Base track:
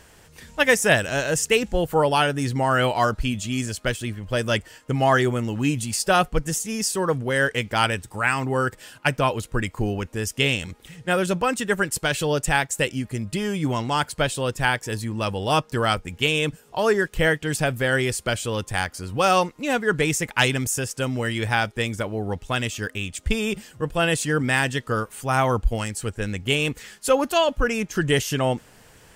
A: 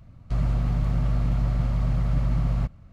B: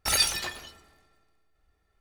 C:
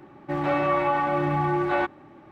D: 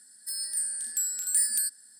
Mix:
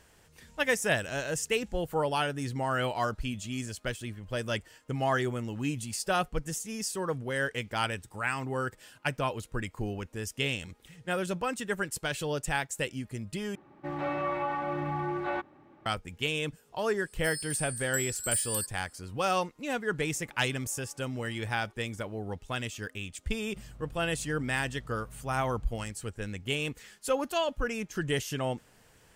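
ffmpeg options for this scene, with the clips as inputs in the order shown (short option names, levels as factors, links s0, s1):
-filter_complex "[3:a]asplit=2[s0][s1];[0:a]volume=0.335[s2];[s1]acompressor=threshold=0.00794:ratio=6:attack=3.2:release=140:knee=1:detection=peak[s3];[1:a]acompressor=threshold=0.0398:ratio=6:attack=3.2:release=140:knee=1:detection=peak[s4];[s2]asplit=2[s5][s6];[s5]atrim=end=13.554[s7];[s0]atrim=end=2.31,asetpts=PTS-STARTPTS,volume=0.376[s8];[s6]atrim=start=15.856[s9];[4:a]atrim=end=1.99,asetpts=PTS-STARTPTS,volume=0.531,afade=t=in:d=0.004:c=hsin,afade=t=out:st=1.986:d=0.004:c=hsin,adelay=16970[s10];[s3]atrim=end=2.31,asetpts=PTS-STARTPTS,volume=0.126,afade=t=in:d=0.004:c=hsin,afade=t=out:st=2.306:d=0.004:c=hsin,adelay=19870[s11];[s4]atrim=end=2.92,asetpts=PTS-STARTPTS,volume=0.141,afade=t=in:d=0.004:c=hsin,afade=t=out:st=2.916:d=0.004:c=hsin,adelay=23260[s12];[s7][s8]acrossfade=d=0.004:c1=hsin:c2=hsin[s13];[s13][s9]acrossfade=d=0.004:c1=hsin:c2=hsin[s14];[s14][s10][s11][s12]amix=inputs=4:normalize=0"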